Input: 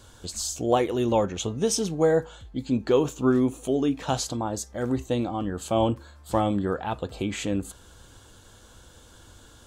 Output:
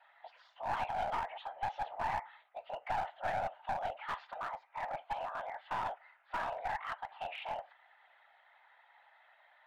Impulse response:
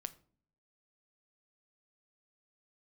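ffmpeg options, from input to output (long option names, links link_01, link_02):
-filter_complex "[0:a]asplit=2[link_01][link_02];[1:a]atrim=start_sample=2205,asetrate=83790,aresample=44100[link_03];[link_02][link_03]afir=irnorm=-1:irlink=0,volume=-6.5dB[link_04];[link_01][link_04]amix=inputs=2:normalize=0,highpass=frequency=360:width_type=q:width=0.5412,highpass=frequency=360:width_type=q:width=1.307,lowpass=frequency=2500:width_type=q:width=0.5176,lowpass=frequency=2500:width_type=q:width=0.7071,lowpass=frequency=2500:width_type=q:width=1.932,afreqshift=380,afftfilt=real='hypot(re,im)*cos(2*PI*random(0))':imag='hypot(re,im)*sin(2*PI*random(1))':win_size=512:overlap=0.75,alimiter=limit=-22.5dB:level=0:latency=1:release=75,equalizer=frequency=1200:width_type=o:width=0.93:gain=-3.5,bandreject=frequency=1100:width=12,aeval=exprs='clip(val(0),-1,0.0168)':channel_layout=same"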